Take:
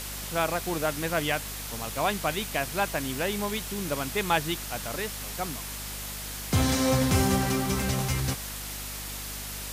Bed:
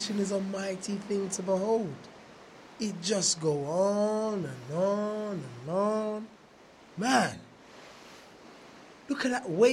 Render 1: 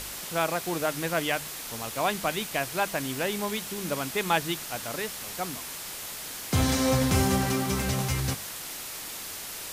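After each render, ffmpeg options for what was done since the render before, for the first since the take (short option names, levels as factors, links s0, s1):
-af "bandreject=f=50:t=h:w=4,bandreject=f=100:t=h:w=4,bandreject=f=150:t=h:w=4,bandreject=f=200:t=h:w=4,bandreject=f=250:t=h:w=4"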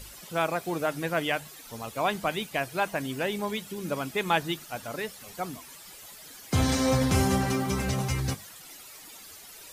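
-af "afftdn=nr=13:nf=-38"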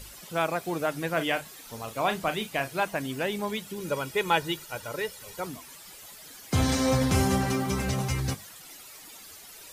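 -filter_complex "[0:a]asettb=1/sr,asplit=3[s0][s1][s2];[s0]atrim=end=1.104[s3];[s1]atrim=start=1.1:end=2.84,asetpts=PTS-STARTPTS,afade=t=in:d=0.004:c=qsin,afade=t=out:st=1.736:d=0.004:c=qsin,asplit=2[s4][s5];[s5]adelay=37,volume=0.316[s6];[s4][s6]amix=inputs=2:normalize=0,atrim=end_sample=76734[s7];[s2]atrim=start=2.836[s8];[s3][s7]acrossfade=d=0.004:c1=hsin:c2=qsin[s9];[s9][s8]acrossfade=d=0.004:c1=qsin:c2=hsin,asettb=1/sr,asplit=3[s10][s11][s12];[s10]atrim=end=3.804[s13];[s11]atrim=start=3.8:end=5.47,asetpts=PTS-STARTPTS,afade=t=in:d=0.004:c=qsin,afade=t=out:st=1.666:d=0.004:c=qsin,aecho=1:1:2.1:0.55,atrim=end_sample=73647[s14];[s12]atrim=start=5.466[s15];[s13][s14]acrossfade=d=0.004:c1=hsin:c2=qsin[s16];[s16][s15]acrossfade=d=0.004:c1=qsin:c2=hsin"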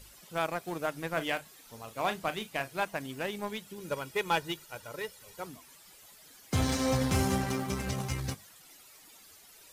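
-af "aeval=exprs='0.335*(cos(1*acos(clip(val(0)/0.335,-1,1)))-cos(1*PI/2))+0.0299*(cos(7*acos(clip(val(0)/0.335,-1,1)))-cos(7*PI/2))':c=same,asoftclip=type=tanh:threshold=0.112"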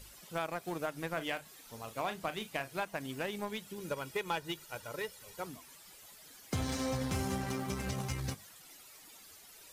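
-af "acompressor=threshold=0.0224:ratio=3"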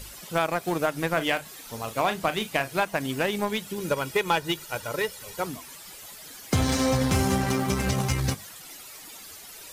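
-af "volume=3.76"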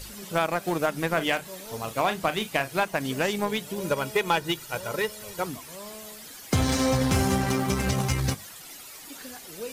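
-filter_complex "[1:a]volume=0.178[s0];[0:a][s0]amix=inputs=2:normalize=0"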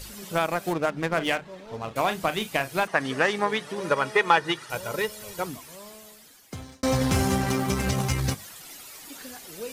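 -filter_complex "[0:a]asettb=1/sr,asplit=3[s0][s1][s2];[s0]atrim=end=0.734[s3];[s1]atrim=start=0.73:end=1.96,asetpts=PTS-STARTPTS,afade=t=in:d=0.004:c=qsin,afade=t=out:st=1.226:d=0.004:c=qsin,adynamicsmooth=sensitivity=6:basefreq=2100[s4];[s2]atrim=start=1.956[s5];[s3][s4]acrossfade=d=0.004:c1=hsin:c2=qsin[s6];[s6][s5]acrossfade=d=0.004:c1=qsin:c2=hsin,asettb=1/sr,asplit=3[s7][s8][s9];[s7]atrim=end=2.874[s10];[s8]atrim=start=2.87:end=4.7,asetpts=PTS-STARTPTS,afade=t=in:d=0.004:c=qsin,afade=t=out:st=1.826:d=0.004:c=qsin,highpass=120,equalizer=f=190:t=q:w=4:g=-4,equalizer=f=470:t=q:w=4:g=3,equalizer=f=810:t=q:w=4:g=4,equalizer=f=1200:t=q:w=4:g=9,equalizer=f=1800:t=q:w=4:g=9,equalizer=f=7300:t=q:w=4:g=-7,lowpass=f=9100:w=0.5412,lowpass=f=9100:w=1.3066[s11];[s9]atrim=start=4.696[s12];[s10][s11]acrossfade=d=0.004:c1=hsin:c2=qsin[s13];[s13][s12]acrossfade=d=0.004:c1=qsin:c2=hsin,asplit=2[s14][s15];[s14]atrim=end=6.83,asetpts=PTS-STARTPTS,afade=t=out:st=5.33:d=1.5[s16];[s15]atrim=start=6.83,asetpts=PTS-STARTPTS,afade=t=in:d=0.004:c=hsin[s17];[s16][s17]concat=n=2:v=0:a=1"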